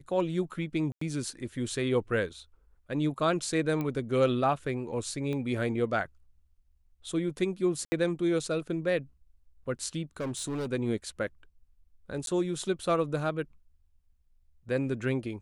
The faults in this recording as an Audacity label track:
0.920000	1.010000	dropout 94 ms
3.810000	3.810000	pop -21 dBFS
5.330000	5.330000	pop -24 dBFS
7.850000	7.920000	dropout 70 ms
10.200000	10.670000	clipped -30 dBFS
12.260000	12.270000	dropout 12 ms

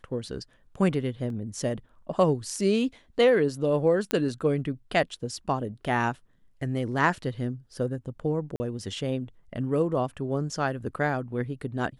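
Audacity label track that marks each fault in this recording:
1.300000	1.300000	dropout 2.1 ms
4.110000	4.110000	pop -11 dBFS
8.560000	8.600000	dropout 40 ms

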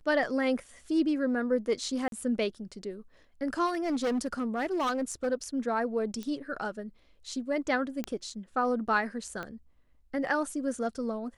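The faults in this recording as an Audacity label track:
2.080000	2.120000	dropout 42 ms
3.660000	5.280000	clipped -25.5 dBFS
6.230000	6.230000	pop -24 dBFS
8.040000	8.040000	pop -18 dBFS
9.430000	9.430000	pop -24 dBFS

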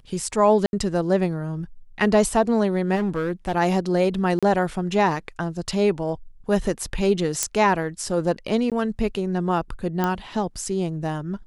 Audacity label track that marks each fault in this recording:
0.660000	0.730000	dropout 71 ms
2.950000	3.530000	clipped -19.5 dBFS
4.390000	4.430000	dropout 36 ms
7.430000	7.430000	pop -5 dBFS
8.700000	8.720000	dropout 17 ms
10.040000	10.040000	pop -10 dBFS

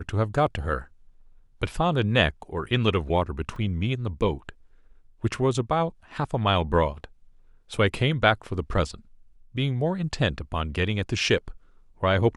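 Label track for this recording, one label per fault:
3.560000	3.560000	dropout 2.8 ms

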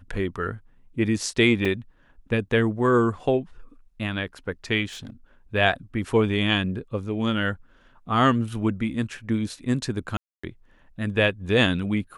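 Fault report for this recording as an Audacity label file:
1.650000	1.650000	dropout 3.7 ms
4.880000	5.100000	clipped -34 dBFS
10.170000	10.440000	dropout 265 ms

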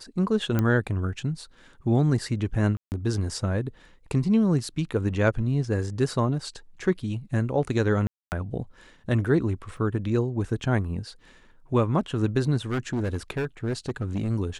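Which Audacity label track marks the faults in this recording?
0.590000	0.590000	pop -12 dBFS
2.770000	2.920000	dropout 149 ms
8.070000	8.320000	dropout 249 ms
9.770000	9.770000	dropout 2.5 ms
12.700000	14.310000	clipped -23 dBFS

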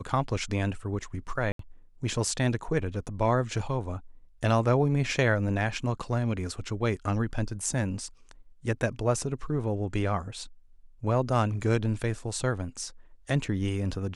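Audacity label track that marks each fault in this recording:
1.520000	1.590000	dropout 73 ms

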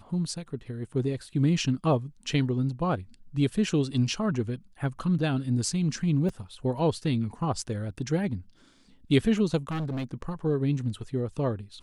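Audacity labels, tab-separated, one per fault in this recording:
6.290000	6.290000	dropout 3.2 ms
9.690000	10.050000	clipped -28 dBFS

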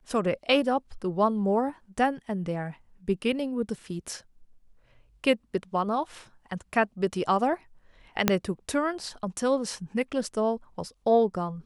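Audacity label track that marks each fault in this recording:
8.280000	8.280000	pop -4 dBFS

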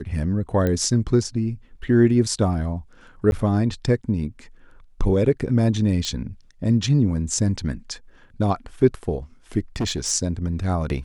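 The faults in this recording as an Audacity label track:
0.670000	0.670000	pop -12 dBFS
3.310000	3.320000	dropout
6.050000	6.050000	pop -13 dBFS
9.760000	10.120000	clipped -19.5 dBFS

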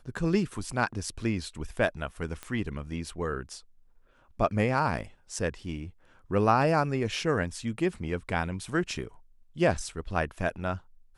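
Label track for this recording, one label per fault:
2.430000	2.430000	pop -22 dBFS

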